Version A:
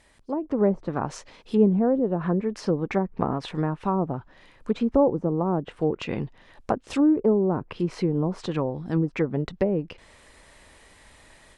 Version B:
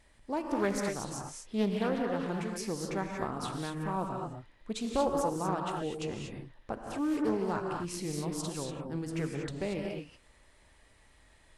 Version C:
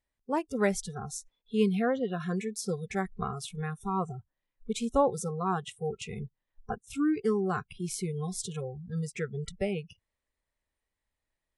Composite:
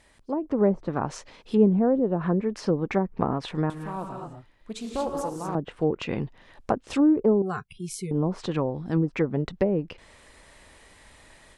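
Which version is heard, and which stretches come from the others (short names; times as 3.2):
A
3.7–5.55 from B
7.42–8.11 from C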